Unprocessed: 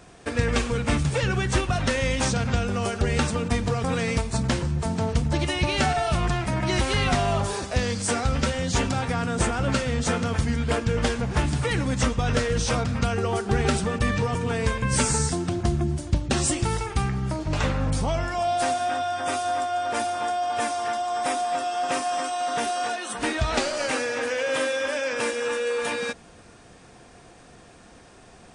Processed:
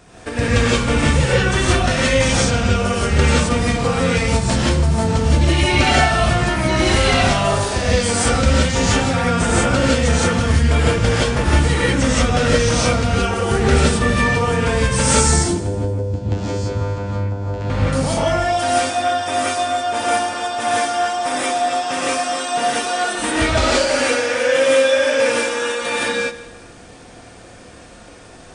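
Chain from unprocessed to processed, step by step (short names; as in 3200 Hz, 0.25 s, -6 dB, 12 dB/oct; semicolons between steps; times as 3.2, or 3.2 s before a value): 15.42–17.7 vocoder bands 8, saw 100 Hz; multi-head echo 78 ms, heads first and second, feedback 48%, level -20 dB; non-linear reverb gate 0.2 s rising, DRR -7 dB; gain +1 dB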